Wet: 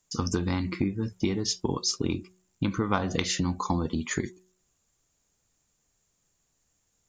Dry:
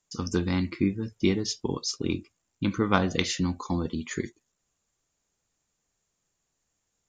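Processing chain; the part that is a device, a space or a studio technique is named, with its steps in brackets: ASMR close-microphone chain (bass shelf 240 Hz +5 dB; compression 6:1, threshold -26 dBFS, peak gain reduction 11 dB; treble shelf 6.9 kHz +6.5 dB); de-hum 184.3 Hz, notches 2; dynamic bell 930 Hz, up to +6 dB, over -51 dBFS, Q 1; trim +2 dB

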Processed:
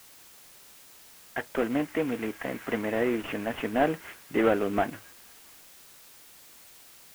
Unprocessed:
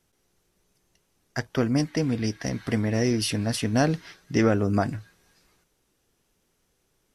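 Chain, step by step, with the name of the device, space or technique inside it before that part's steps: army field radio (band-pass 360–3300 Hz; CVSD coder 16 kbps; white noise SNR 21 dB); trim +2.5 dB

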